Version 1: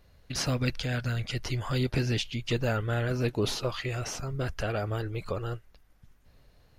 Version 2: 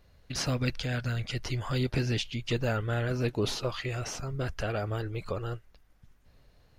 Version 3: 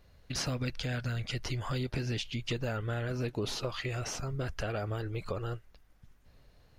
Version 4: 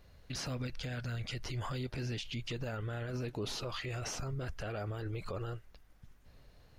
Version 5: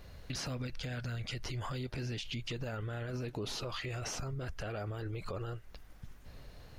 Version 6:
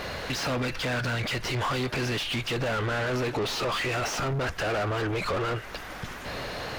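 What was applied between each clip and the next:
bell 12000 Hz -3.5 dB 0.59 oct; gain -1 dB
compressor, threshold -30 dBFS, peak gain reduction 6.5 dB
limiter -31.5 dBFS, peak gain reduction 10.5 dB; gain +1 dB
compressor 2.5:1, threshold -48 dBFS, peak gain reduction 9.5 dB; gain +8 dB
overdrive pedal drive 30 dB, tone 2600 Hz, clips at -27.5 dBFS; gain +6.5 dB

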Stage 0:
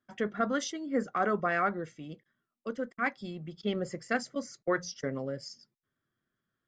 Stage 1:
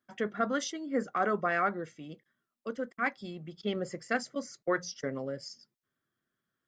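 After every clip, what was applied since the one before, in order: low shelf 110 Hz -8.5 dB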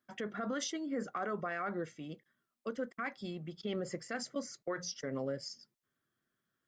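limiter -28 dBFS, peak gain reduction 11.5 dB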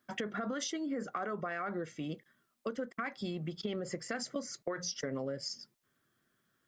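compressor, threshold -42 dBFS, peak gain reduction 9.5 dB; gain +8 dB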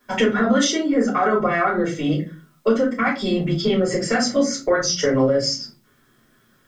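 shoebox room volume 120 m³, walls furnished, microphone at 4.5 m; gain +8 dB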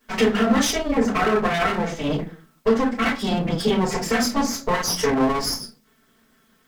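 minimum comb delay 4.5 ms

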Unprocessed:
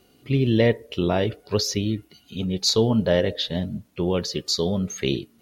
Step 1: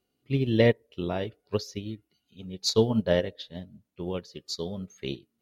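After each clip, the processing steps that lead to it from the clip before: upward expander 2.5:1, over -29 dBFS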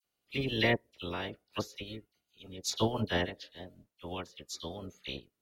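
spectral limiter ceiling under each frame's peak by 17 dB; dispersion lows, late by 45 ms, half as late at 2300 Hz; gain -7 dB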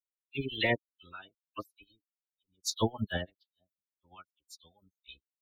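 per-bin expansion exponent 3; gain +3.5 dB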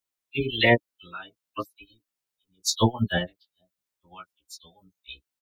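doubler 17 ms -4 dB; gain +7 dB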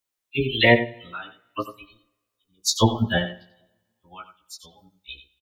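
echo 90 ms -12 dB; reverb RT60 0.95 s, pre-delay 3 ms, DRR 16 dB; gain +3 dB

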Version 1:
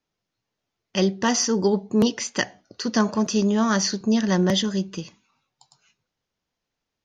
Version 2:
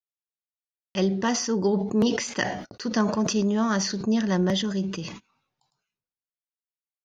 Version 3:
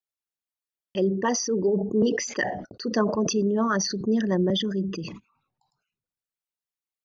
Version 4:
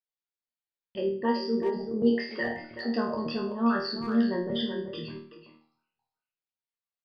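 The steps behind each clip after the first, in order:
gate -46 dBFS, range -38 dB; high shelf 4300 Hz -7 dB; sustainer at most 62 dB/s; gain -3 dB
formant sharpening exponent 2
resonator bank D#2 fifth, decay 0.46 s; downsampling 11025 Hz; speakerphone echo 0.38 s, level -8 dB; gain +8 dB

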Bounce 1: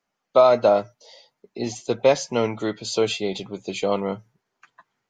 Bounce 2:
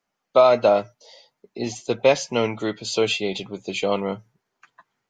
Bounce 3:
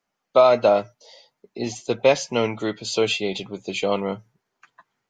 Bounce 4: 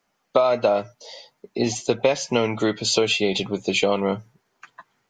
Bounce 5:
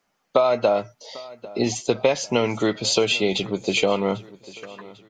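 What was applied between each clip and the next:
dynamic EQ 2700 Hz, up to +6 dB, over -44 dBFS, Q 2
nothing audible
compressor 5:1, threshold -24 dBFS, peak gain reduction 12.5 dB; gain +7.5 dB
feedback echo 0.796 s, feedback 46%, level -20 dB

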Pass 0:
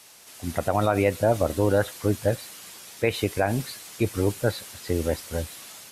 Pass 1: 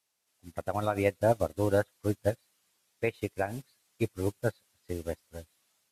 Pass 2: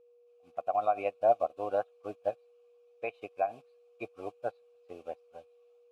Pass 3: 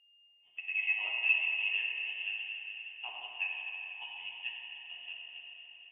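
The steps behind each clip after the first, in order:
upward expander 2.5:1, over -36 dBFS; gain -2 dB
vowel filter a; whine 480 Hz -67 dBFS; gain +7.5 dB
reverb RT60 4.4 s, pre-delay 3 ms, DRR -3.5 dB; inverted band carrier 3300 Hz; gain -7.5 dB

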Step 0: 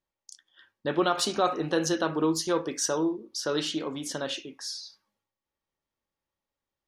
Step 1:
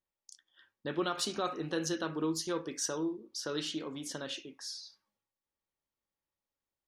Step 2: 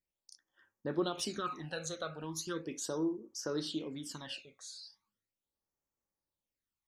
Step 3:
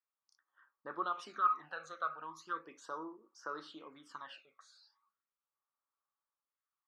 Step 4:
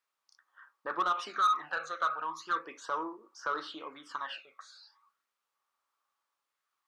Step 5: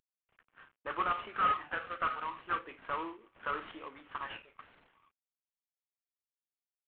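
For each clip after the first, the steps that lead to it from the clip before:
dynamic EQ 730 Hz, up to -6 dB, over -39 dBFS, Q 1.2; gain -6 dB
phaser stages 12, 0.38 Hz, lowest notch 290–3800 Hz
band-pass 1200 Hz, Q 5.2; gain +10.5 dB
overdrive pedal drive 18 dB, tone 3600 Hz, clips at -19 dBFS
CVSD 16 kbps; gain -2 dB

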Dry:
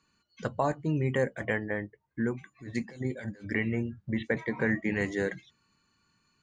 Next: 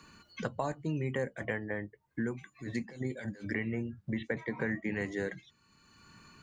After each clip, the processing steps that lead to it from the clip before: three-band squash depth 70%; gain -5 dB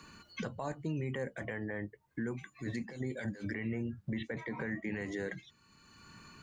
limiter -30 dBFS, peak gain reduction 10.5 dB; gain +2 dB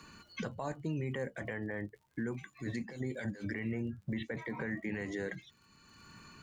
crackle 62/s -56 dBFS

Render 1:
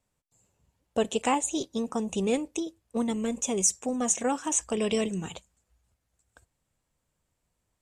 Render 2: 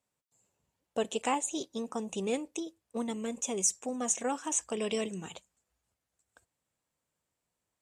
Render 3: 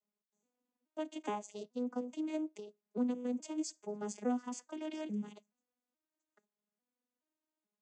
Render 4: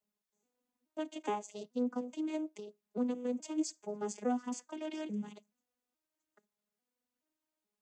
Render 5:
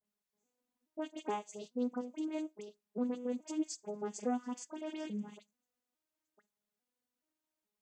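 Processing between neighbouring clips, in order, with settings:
HPF 230 Hz 6 dB/oct; gain -4 dB
arpeggiated vocoder minor triad, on G#3, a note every 0.424 s; gain -4 dB
phaser 1.1 Hz, delay 2.7 ms, feedback 28%; gain +1.5 dB
dispersion highs, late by 55 ms, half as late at 1900 Hz; gain -1.5 dB

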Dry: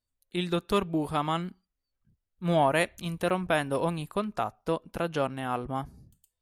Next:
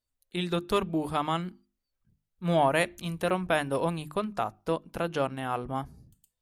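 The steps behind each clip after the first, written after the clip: notches 50/100/150/200/250/300/350 Hz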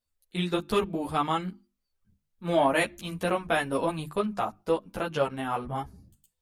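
ensemble effect; gain +4 dB

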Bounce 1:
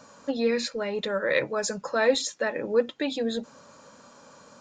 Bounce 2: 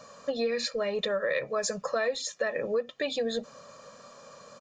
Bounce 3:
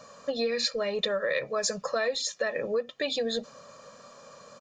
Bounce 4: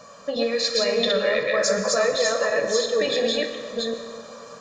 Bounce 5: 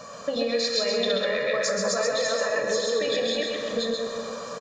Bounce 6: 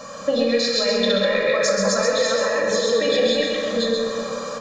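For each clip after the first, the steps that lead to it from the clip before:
bell 69 Hz -10.5 dB 0.86 oct; comb 1.7 ms, depth 60%; compressor 12:1, threshold -25 dBFS, peak gain reduction 13 dB
dynamic EQ 4500 Hz, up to +5 dB, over -47 dBFS, Q 1.1
reverse delay 0.358 s, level -0.5 dB; on a send at -4 dB: reverb RT60 2.5 s, pre-delay 7 ms; on the sum: gain +3.5 dB
compressor 3:1, threshold -30 dBFS, peak gain reduction 10 dB; on a send: echo 0.133 s -4 dB; on the sum: gain +4 dB
shoebox room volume 2000 m³, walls furnished, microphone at 2.2 m; gain +3.5 dB

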